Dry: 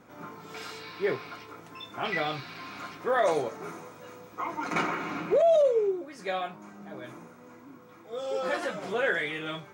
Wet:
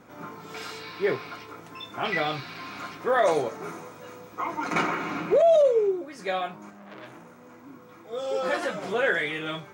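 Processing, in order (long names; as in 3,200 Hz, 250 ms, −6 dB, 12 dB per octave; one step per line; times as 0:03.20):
0:06.70–0:07.64: saturating transformer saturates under 2,000 Hz
level +3 dB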